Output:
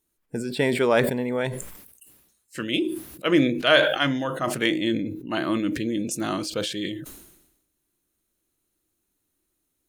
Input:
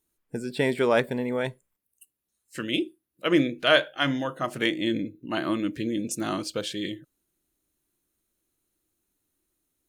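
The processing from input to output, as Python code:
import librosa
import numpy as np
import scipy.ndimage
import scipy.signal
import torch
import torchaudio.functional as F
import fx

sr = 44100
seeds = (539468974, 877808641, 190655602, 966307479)

y = fx.sustainer(x, sr, db_per_s=60.0)
y = y * 10.0 ** (1.5 / 20.0)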